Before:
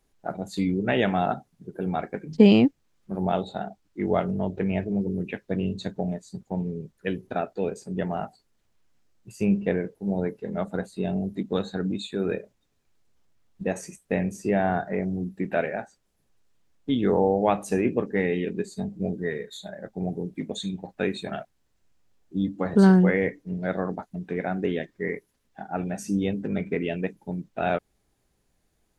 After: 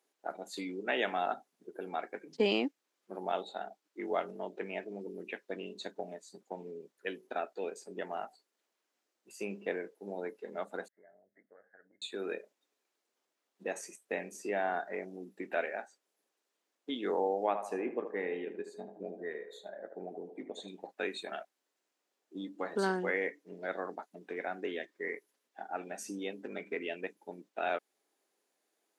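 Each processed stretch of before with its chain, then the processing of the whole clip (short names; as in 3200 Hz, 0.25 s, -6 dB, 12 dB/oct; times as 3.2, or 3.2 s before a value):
10.88–12.02 EQ curve 110 Hz 0 dB, 170 Hz -20 dB, 380 Hz -25 dB, 610 Hz -9 dB, 990 Hz -23 dB, 1700 Hz -2 dB, 3300 Hz -15 dB, 4700 Hz +1 dB, 11000 Hz +13 dB + compressor 4:1, threshold -49 dBFS + brick-wall FIR low-pass 2200 Hz
17.46–20.68 high shelf 2100 Hz -11.5 dB + narrowing echo 76 ms, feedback 52%, band-pass 760 Hz, level -7 dB
whole clip: HPF 320 Hz 24 dB/oct; dynamic EQ 450 Hz, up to -5 dB, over -37 dBFS, Q 0.83; gain -4.5 dB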